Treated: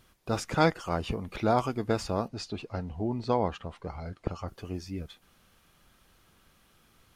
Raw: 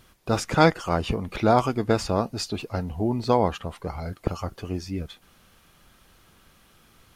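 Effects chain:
0:02.28–0:04.48: high-frequency loss of the air 63 metres
level −6 dB

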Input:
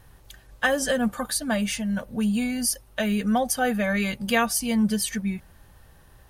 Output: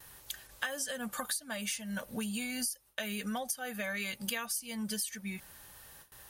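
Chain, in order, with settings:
notch filter 710 Hz, Q 20
noise gate with hold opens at −43 dBFS
spectral tilt +3 dB per octave
downward compressor 16 to 1, threshold −33 dBFS, peak gain reduction 22.5 dB

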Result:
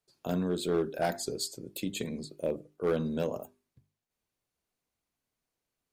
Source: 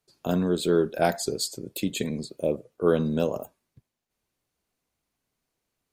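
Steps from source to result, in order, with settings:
mains-hum notches 50/100/150/200/250/300/350/400 Hz
hard clipping −16 dBFS, distortion −17 dB
level −5.5 dB

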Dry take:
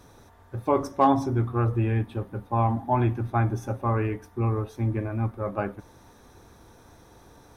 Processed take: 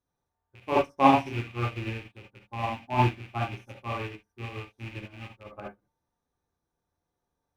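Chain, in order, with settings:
loose part that buzzes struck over −30 dBFS, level −19 dBFS
reverb whose tail is shaped and stops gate 90 ms rising, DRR −1.5 dB
expander for the loud parts 2.5 to 1, over −37 dBFS

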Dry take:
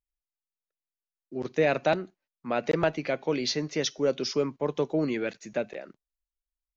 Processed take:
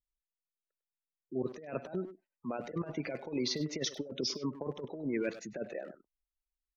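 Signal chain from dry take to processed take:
gate on every frequency bin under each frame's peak −20 dB strong
dynamic equaliser 2,800 Hz, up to −4 dB, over −48 dBFS, Q 2.4
compressor whose output falls as the input rises −30 dBFS, ratio −0.5
far-end echo of a speakerphone 100 ms, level −10 dB
level −5 dB

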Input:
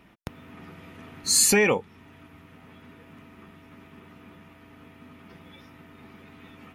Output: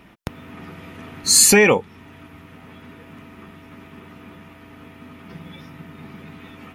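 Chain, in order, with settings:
0:05.27–0:06.38: parametric band 160 Hz +8.5 dB 0.58 octaves
level +7 dB

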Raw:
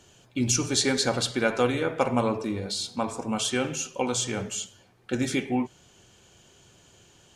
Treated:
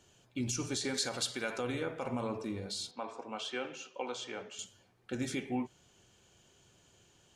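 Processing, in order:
0:02.91–0:04.59: three-way crossover with the lows and the highs turned down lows −19 dB, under 300 Hz, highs −21 dB, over 4,800 Hz
brickwall limiter −17 dBFS, peak gain reduction 9 dB
0:00.94–0:01.58: spectral tilt +2 dB per octave
level −8.5 dB

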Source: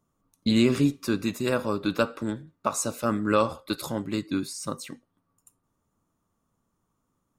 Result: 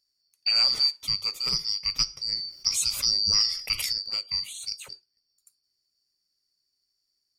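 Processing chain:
band-splitting scrambler in four parts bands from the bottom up 2341
parametric band 850 Hz −6.5 dB 1.4 octaves
0:02.32–0:03.93: envelope flattener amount 50%
level −1.5 dB

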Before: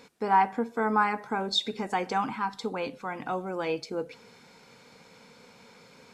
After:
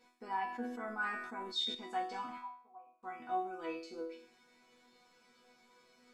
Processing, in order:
0:02.38–0:03.03: formant resonators in series a
resonators tuned to a chord B3 sus4, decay 0.53 s
0:00.46–0:01.75: level that may fall only so fast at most 50 dB per second
level +9 dB

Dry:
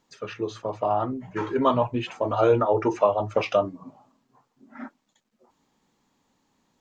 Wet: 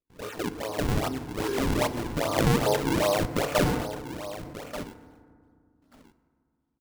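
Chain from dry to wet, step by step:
spectrum averaged block by block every 100 ms
noise gate with hold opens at −51 dBFS
low-pass filter 2,000 Hz 6 dB per octave
low-shelf EQ 280 Hz −11.5 dB
in parallel at −1.5 dB: downward compressor, threshold −32 dBFS, peak gain reduction 12 dB
on the sum: sample-and-hold swept by an LFO 41×, swing 160% 2.5 Hz
on a send: single-tap delay 1,185 ms −13 dB
on the sum: feedback delay network reverb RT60 2.1 s, low-frequency decay 1.55×, high-frequency decay 0.35×, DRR 11.5 dB
0:03.58–0:04.80: level that may fall only so fast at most 48 dB per second

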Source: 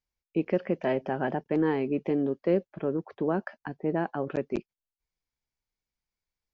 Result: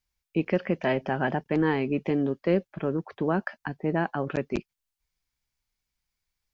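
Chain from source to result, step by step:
parametric band 430 Hz −7.5 dB 2.3 octaves
level +7.5 dB

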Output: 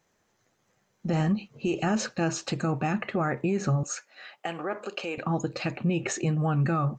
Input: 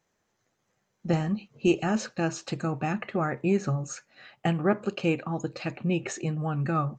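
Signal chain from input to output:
brickwall limiter −22.5 dBFS, peak gain reduction 11.5 dB
0:03.83–0:05.18: high-pass filter 460 Hz 12 dB per octave
level +4.5 dB

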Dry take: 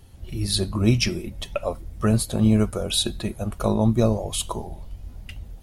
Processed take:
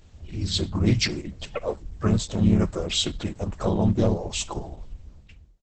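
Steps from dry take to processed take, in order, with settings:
fade-out on the ending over 0.87 s
pitch-shifted copies added −3 semitones −1 dB, +5 semitones −17 dB
level −4 dB
Opus 10 kbit/s 48,000 Hz

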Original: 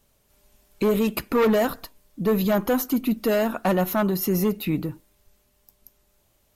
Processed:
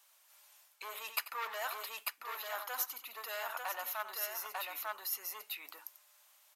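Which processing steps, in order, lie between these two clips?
multi-tap delay 91/896 ms −13.5/−4.5 dB
reversed playback
downward compressor 6 to 1, threshold −31 dBFS, peak gain reduction 15 dB
reversed playback
high-pass filter 870 Hz 24 dB per octave
level +2 dB

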